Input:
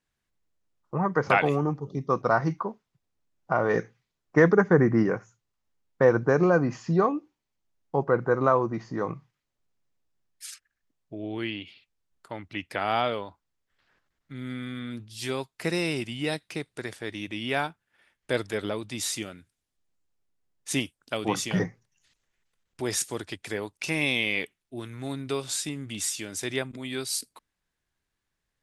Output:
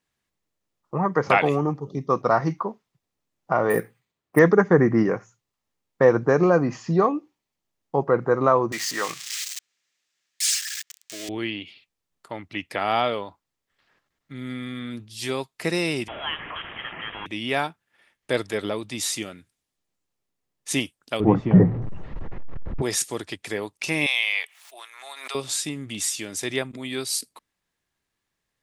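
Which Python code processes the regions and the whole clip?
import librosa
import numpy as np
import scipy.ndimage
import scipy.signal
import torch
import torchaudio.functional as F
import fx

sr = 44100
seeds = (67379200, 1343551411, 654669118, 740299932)

y = fx.chain(x, sr, fx.highpass(hz=42.0, slope=12),
    fx.high_shelf(hz=9300.0, db=-10.0),
    fx.resample_bad(factor=4, down='filtered', up='hold'), at=(3.7, 4.39))
y = fx.chain(y, sr, fx.crossing_spikes(level_db=-32.0),
    fx.highpass(hz=620.0, slope=6),
    fx.band_shelf(hz=3400.0, db=13.0, octaves=2.8), at=(8.72, 11.29))
y = fx.chain(y, sr, fx.delta_mod(bps=64000, step_db=-29.0),
    fx.highpass(hz=600.0, slope=12),
    fx.freq_invert(carrier_hz=3600), at=(16.08, 17.26))
y = fx.chain(y, sr, fx.zero_step(step_db=-33.5),
    fx.lowpass(hz=1400.0, slope=12),
    fx.tilt_eq(slope=-4.0), at=(21.2, 22.82))
y = fx.chain(y, sr, fx.cheby2_highpass(hz=170.0, order=4, stop_db=70),
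    fx.pre_swell(db_per_s=54.0), at=(24.06, 25.35))
y = fx.low_shelf(y, sr, hz=71.0, db=-11.0)
y = fx.notch(y, sr, hz=1500.0, q=14.0)
y = y * librosa.db_to_amplitude(3.5)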